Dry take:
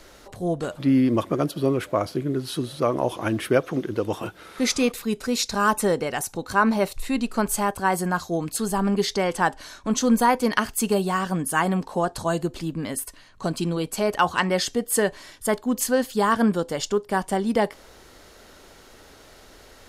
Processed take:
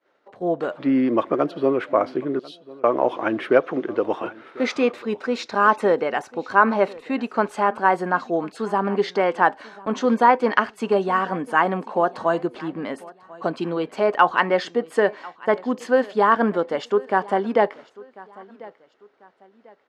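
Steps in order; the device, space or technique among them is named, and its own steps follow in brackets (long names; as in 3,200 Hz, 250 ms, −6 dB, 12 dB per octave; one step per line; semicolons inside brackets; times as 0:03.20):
0:02.39–0:02.84: Butterworth high-pass 3,000 Hz
high-pass filter 330 Hz 12 dB per octave
hearing-loss simulation (low-pass filter 2,100 Hz 12 dB per octave; downward expander −40 dBFS)
repeating echo 1,044 ms, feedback 33%, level −21.5 dB
level +5 dB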